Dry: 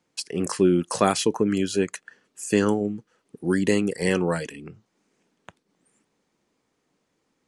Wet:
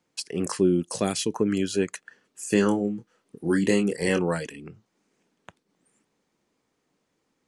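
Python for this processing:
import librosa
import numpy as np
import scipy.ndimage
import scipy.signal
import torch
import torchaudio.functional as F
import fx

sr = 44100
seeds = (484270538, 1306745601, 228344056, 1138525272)

y = fx.peak_eq(x, sr, hz=fx.line((0.59, 2200.0), (1.34, 730.0)), db=-11.5, octaves=1.6, at=(0.59, 1.34), fade=0.02)
y = fx.doubler(y, sr, ms=25.0, db=-6.5, at=(2.48, 4.19))
y = y * 10.0 ** (-1.5 / 20.0)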